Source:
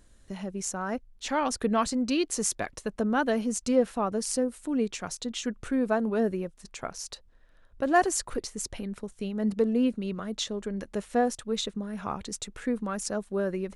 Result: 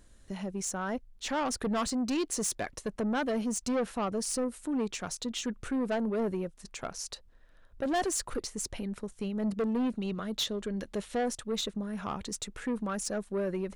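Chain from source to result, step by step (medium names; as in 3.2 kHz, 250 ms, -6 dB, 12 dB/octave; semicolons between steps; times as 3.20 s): 9.96–11.19 s: peaking EQ 3.6 kHz +6 dB 0.77 oct; saturation -25.5 dBFS, distortion -10 dB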